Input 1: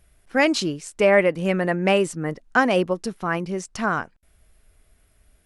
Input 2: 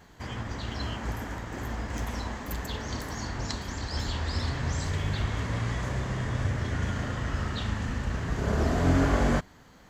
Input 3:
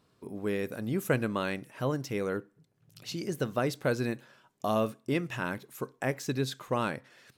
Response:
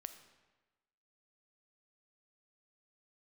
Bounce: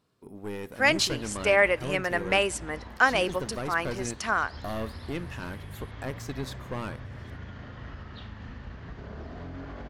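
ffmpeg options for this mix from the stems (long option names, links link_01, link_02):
-filter_complex "[0:a]highpass=frequency=1200:poles=1,adelay=450,volume=0dB,asplit=2[link_01][link_02];[link_02]volume=-12.5dB[link_03];[1:a]lowpass=frequency=4700:width=0.5412,lowpass=frequency=4700:width=1.3066,alimiter=limit=-22.5dB:level=0:latency=1:release=146,adelay=600,volume=-9.5dB[link_04];[2:a]aeval=exprs='(tanh(17.8*val(0)+0.6)-tanh(0.6))/17.8':channel_layout=same,volume=-1.5dB[link_05];[3:a]atrim=start_sample=2205[link_06];[link_03][link_06]afir=irnorm=-1:irlink=0[link_07];[link_01][link_04][link_05][link_07]amix=inputs=4:normalize=0"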